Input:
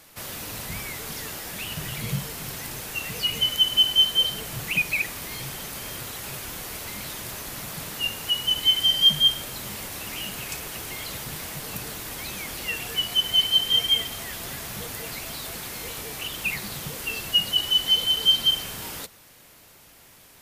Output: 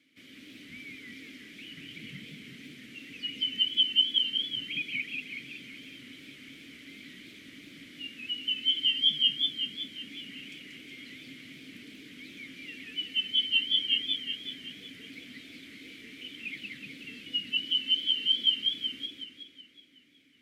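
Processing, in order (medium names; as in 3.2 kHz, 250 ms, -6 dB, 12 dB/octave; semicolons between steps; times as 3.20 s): vowel filter i; modulated delay 186 ms, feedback 59%, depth 169 cents, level -3 dB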